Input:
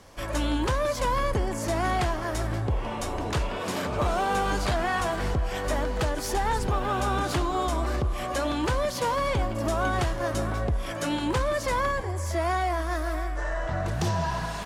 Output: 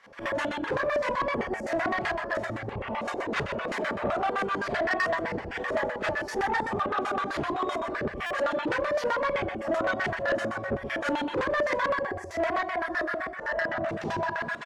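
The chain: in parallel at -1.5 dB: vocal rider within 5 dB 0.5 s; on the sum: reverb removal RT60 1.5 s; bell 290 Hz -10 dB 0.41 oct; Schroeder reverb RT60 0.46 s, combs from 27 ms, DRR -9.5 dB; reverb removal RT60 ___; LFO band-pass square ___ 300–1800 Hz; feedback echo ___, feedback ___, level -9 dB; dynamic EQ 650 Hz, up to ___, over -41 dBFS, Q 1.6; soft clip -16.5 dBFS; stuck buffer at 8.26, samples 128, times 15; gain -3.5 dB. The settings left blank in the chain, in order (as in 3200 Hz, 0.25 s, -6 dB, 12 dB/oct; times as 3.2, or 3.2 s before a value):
0.57 s, 7.8 Hz, 0.125 s, 33%, +7 dB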